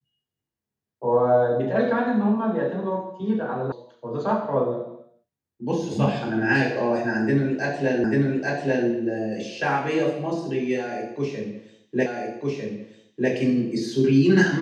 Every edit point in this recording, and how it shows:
3.72 s: sound stops dead
8.04 s: repeat of the last 0.84 s
12.06 s: repeat of the last 1.25 s

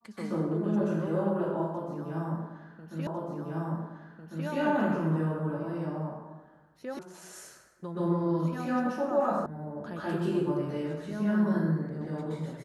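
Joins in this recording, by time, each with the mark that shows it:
3.07 s: repeat of the last 1.4 s
6.99 s: sound stops dead
9.46 s: sound stops dead

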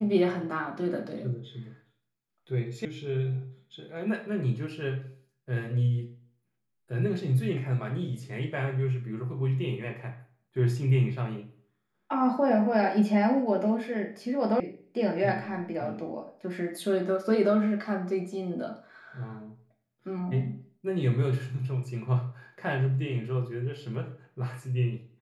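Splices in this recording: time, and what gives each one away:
2.85 s: sound stops dead
14.60 s: sound stops dead

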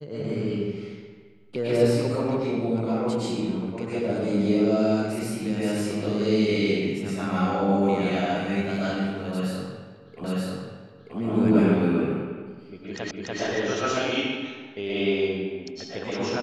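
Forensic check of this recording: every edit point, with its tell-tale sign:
10.24 s: repeat of the last 0.93 s
13.11 s: repeat of the last 0.29 s

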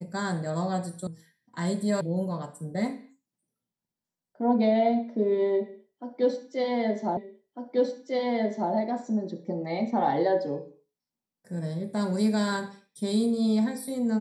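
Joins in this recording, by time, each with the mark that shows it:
1.07 s: sound stops dead
2.01 s: sound stops dead
7.17 s: repeat of the last 1.55 s

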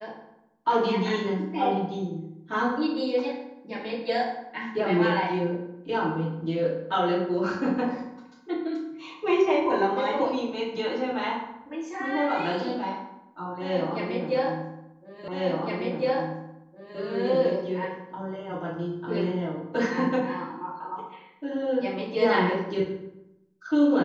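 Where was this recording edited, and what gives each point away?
15.28 s: repeat of the last 1.71 s

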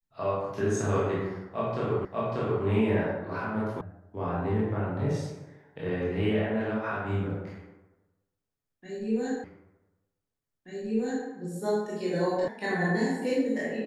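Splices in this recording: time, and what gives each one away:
2.05 s: repeat of the last 0.59 s
3.81 s: sound stops dead
9.44 s: repeat of the last 1.83 s
12.48 s: sound stops dead

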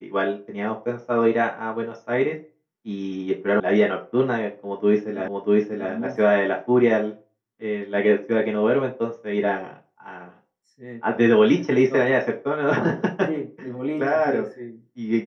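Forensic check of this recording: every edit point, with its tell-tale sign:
3.60 s: sound stops dead
5.28 s: repeat of the last 0.64 s

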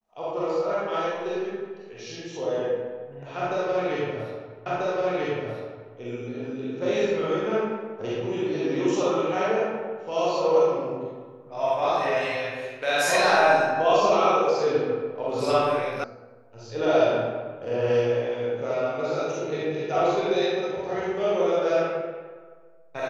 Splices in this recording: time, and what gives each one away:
4.66 s: repeat of the last 1.29 s
16.04 s: sound stops dead

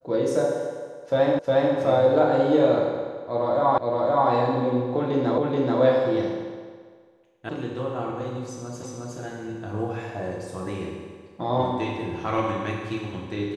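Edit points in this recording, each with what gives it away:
1.39 s: repeat of the last 0.36 s
3.78 s: repeat of the last 0.52 s
5.38 s: repeat of the last 0.43 s
7.49 s: sound stops dead
8.83 s: repeat of the last 0.36 s

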